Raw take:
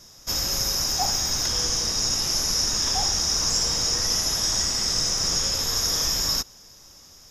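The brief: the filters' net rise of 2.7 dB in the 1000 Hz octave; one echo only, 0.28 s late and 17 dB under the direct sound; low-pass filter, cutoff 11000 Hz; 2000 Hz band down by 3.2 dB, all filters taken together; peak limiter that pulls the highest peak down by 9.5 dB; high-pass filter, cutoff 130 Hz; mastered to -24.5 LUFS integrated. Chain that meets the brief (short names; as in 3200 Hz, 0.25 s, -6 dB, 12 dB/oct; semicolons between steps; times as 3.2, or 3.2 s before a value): HPF 130 Hz; LPF 11000 Hz; bell 1000 Hz +5 dB; bell 2000 Hz -6 dB; limiter -20.5 dBFS; echo 0.28 s -17 dB; gain +2.5 dB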